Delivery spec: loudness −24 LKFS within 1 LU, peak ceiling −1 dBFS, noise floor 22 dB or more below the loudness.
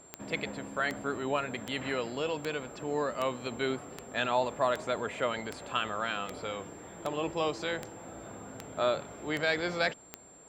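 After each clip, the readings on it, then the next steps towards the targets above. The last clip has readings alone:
number of clicks 14; interfering tone 7,400 Hz; level of the tone −54 dBFS; integrated loudness −33.0 LKFS; sample peak −14.0 dBFS; target loudness −24.0 LKFS
→ click removal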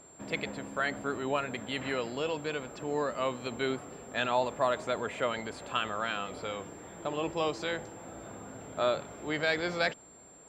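number of clicks 0; interfering tone 7,400 Hz; level of the tone −54 dBFS
→ notch filter 7,400 Hz, Q 30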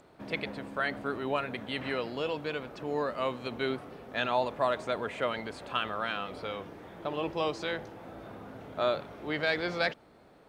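interfering tone none found; integrated loudness −33.0 LKFS; sample peak −14.0 dBFS; target loudness −24.0 LKFS
→ level +9 dB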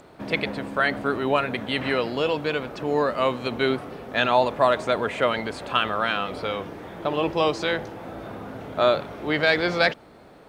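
integrated loudness −24.0 LKFS; sample peak −5.0 dBFS; background noise floor −49 dBFS

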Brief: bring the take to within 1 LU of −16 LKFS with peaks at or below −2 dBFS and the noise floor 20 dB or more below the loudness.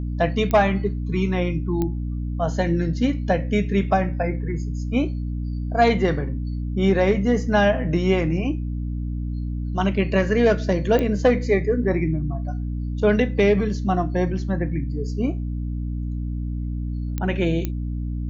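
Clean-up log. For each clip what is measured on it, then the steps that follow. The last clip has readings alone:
number of clicks 5; mains hum 60 Hz; hum harmonics up to 300 Hz; level of the hum −24 dBFS; integrated loudness −23.0 LKFS; sample peak −6.0 dBFS; target loudness −16.0 LKFS
→ click removal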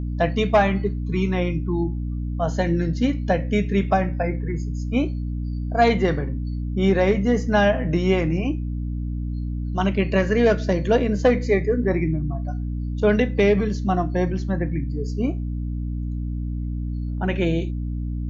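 number of clicks 0; mains hum 60 Hz; hum harmonics up to 300 Hz; level of the hum −24 dBFS
→ mains-hum notches 60/120/180/240/300 Hz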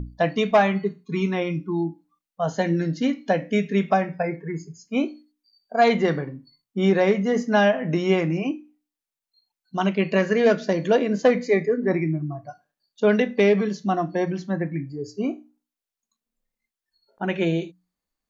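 mains hum none found; integrated loudness −23.0 LKFS; sample peak −7.0 dBFS; target loudness −16.0 LKFS
→ level +7 dB
brickwall limiter −2 dBFS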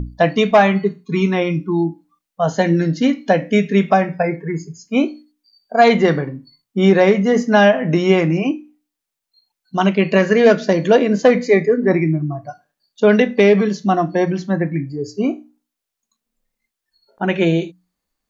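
integrated loudness −16.5 LKFS; sample peak −2.0 dBFS; background noise floor −83 dBFS

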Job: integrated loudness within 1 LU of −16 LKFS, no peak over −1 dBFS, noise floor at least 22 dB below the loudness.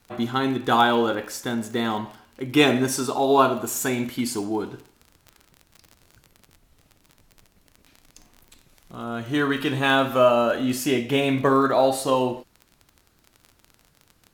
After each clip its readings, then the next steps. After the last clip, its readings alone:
crackle rate 31 per second; integrated loudness −22.0 LKFS; sample peak −4.0 dBFS; target loudness −16.0 LKFS
→ click removal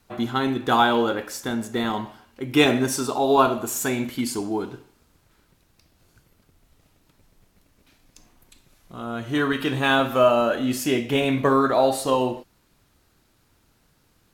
crackle rate 0.56 per second; integrated loudness −22.0 LKFS; sample peak −4.0 dBFS; target loudness −16.0 LKFS
→ level +6 dB
brickwall limiter −1 dBFS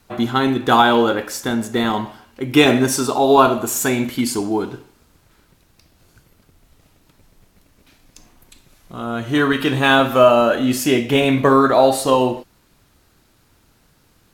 integrated loudness −16.5 LKFS; sample peak −1.0 dBFS; background noise floor −58 dBFS

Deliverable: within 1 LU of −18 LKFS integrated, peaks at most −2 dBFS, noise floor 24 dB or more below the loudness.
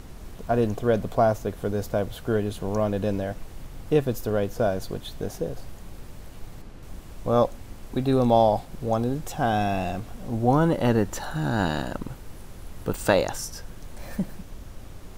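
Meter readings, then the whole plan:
background noise floor −42 dBFS; target noise floor −50 dBFS; integrated loudness −26.0 LKFS; sample peak −6.5 dBFS; target loudness −18.0 LKFS
→ noise reduction from a noise print 8 dB
level +8 dB
brickwall limiter −2 dBFS

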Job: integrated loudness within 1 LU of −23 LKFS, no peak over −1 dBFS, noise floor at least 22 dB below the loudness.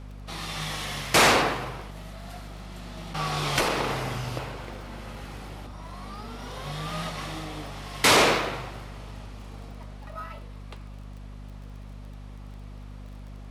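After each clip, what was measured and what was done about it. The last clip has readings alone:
crackle rate 20 per second; mains hum 50 Hz; hum harmonics up to 250 Hz; level of the hum −39 dBFS; integrated loudness −25.5 LKFS; sample peak −8.5 dBFS; target loudness −23.0 LKFS
→ click removal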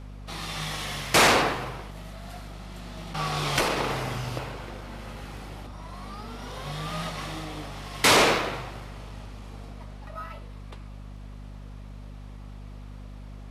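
crackle rate 0.074 per second; mains hum 50 Hz; hum harmonics up to 250 Hz; level of the hum −39 dBFS
→ mains-hum notches 50/100/150/200/250 Hz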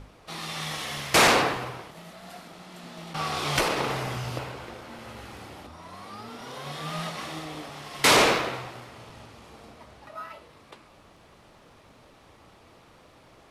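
mains hum none found; integrated loudness −25.5 LKFS; sample peak −9.0 dBFS; target loudness −23.0 LKFS
→ level +2.5 dB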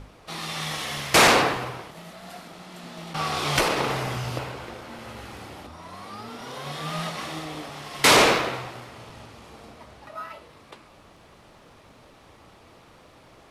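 integrated loudness −23.0 LKFS; sample peak −6.5 dBFS; background noise floor −53 dBFS

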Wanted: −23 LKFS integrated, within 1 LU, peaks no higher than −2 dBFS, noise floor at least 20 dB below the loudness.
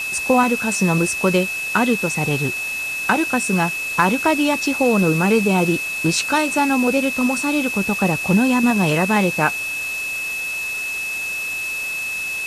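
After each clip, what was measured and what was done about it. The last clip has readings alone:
interfering tone 2,600 Hz; level of the tone −23 dBFS; background noise floor −26 dBFS; target noise floor −39 dBFS; integrated loudness −18.5 LKFS; sample peak −2.5 dBFS; target loudness −23.0 LKFS
→ notch filter 2,600 Hz, Q 30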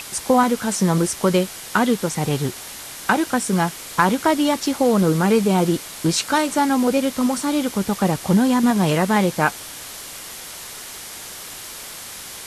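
interfering tone none found; background noise floor −36 dBFS; target noise floor −40 dBFS
→ broadband denoise 6 dB, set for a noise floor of −36 dBFS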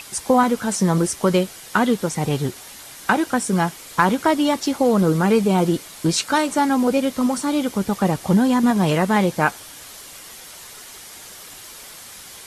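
background noise floor −40 dBFS; integrated loudness −19.5 LKFS; sample peak −3.0 dBFS; target loudness −23.0 LKFS
→ level −3.5 dB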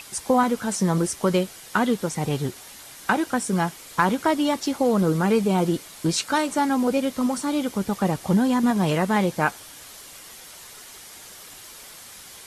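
integrated loudness −23.0 LKFS; sample peak −6.5 dBFS; background noise floor −44 dBFS

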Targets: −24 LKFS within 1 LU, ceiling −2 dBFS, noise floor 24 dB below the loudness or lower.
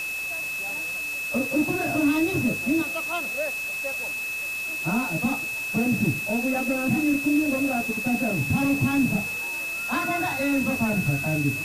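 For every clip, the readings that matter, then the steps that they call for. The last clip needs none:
interfering tone 2,600 Hz; level of the tone −28 dBFS; background noise floor −31 dBFS; target noise floor −49 dBFS; integrated loudness −24.5 LKFS; sample peak −12.0 dBFS; target loudness −24.0 LKFS
→ notch filter 2,600 Hz, Q 30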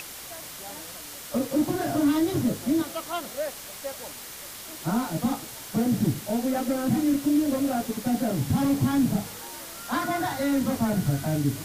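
interfering tone none found; background noise floor −41 dBFS; target noise floor −51 dBFS
→ broadband denoise 10 dB, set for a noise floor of −41 dBFS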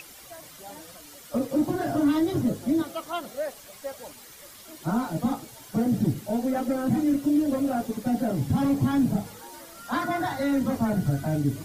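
background noise floor −47 dBFS; target noise floor −51 dBFS
→ broadband denoise 6 dB, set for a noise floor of −47 dBFS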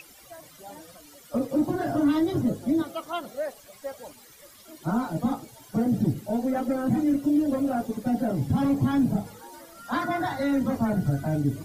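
background noise floor −52 dBFS; integrated loudness −26.5 LKFS; sample peak −13.5 dBFS; target loudness −24.0 LKFS
→ level +2.5 dB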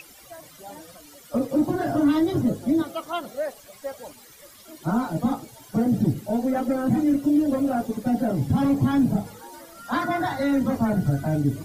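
integrated loudness −24.0 LKFS; sample peak −11.0 dBFS; background noise floor −49 dBFS

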